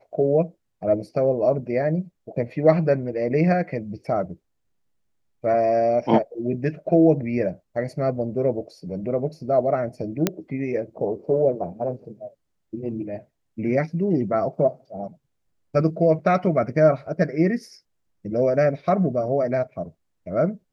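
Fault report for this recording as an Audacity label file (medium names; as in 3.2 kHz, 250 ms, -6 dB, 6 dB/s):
10.270000	10.270000	pop -5 dBFS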